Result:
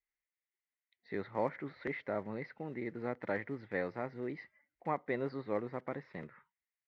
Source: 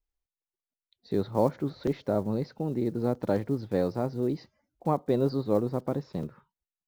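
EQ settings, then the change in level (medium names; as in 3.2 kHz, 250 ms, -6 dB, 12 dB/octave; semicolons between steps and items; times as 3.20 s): band-pass filter 2 kHz, Q 7.2; tilt EQ -3.5 dB/octave; +15.5 dB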